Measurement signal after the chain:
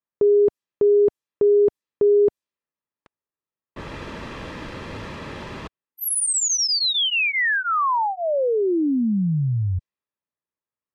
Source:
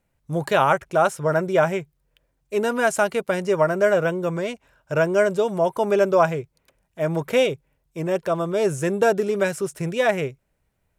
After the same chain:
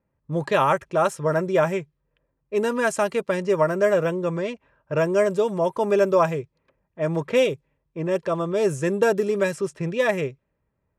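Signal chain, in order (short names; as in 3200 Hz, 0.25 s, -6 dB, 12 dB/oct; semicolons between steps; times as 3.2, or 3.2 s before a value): notch comb 730 Hz; low-pass opened by the level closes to 1500 Hz, open at -17.5 dBFS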